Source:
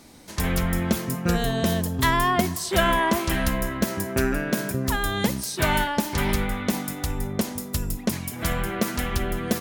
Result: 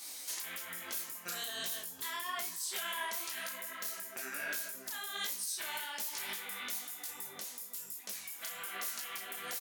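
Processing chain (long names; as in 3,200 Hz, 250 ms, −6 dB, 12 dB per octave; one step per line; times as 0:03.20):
high-pass filter 550 Hz 6 dB per octave
spectral tilt +4.5 dB per octave
downward compressor 6 to 1, threshold −31 dBFS, peak gain reduction 19 dB
brickwall limiter −22.5 dBFS, peak gain reduction 9.5 dB
double-tracking delay 35 ms −7.5 dB
micro pitch shift up and down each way 39 cents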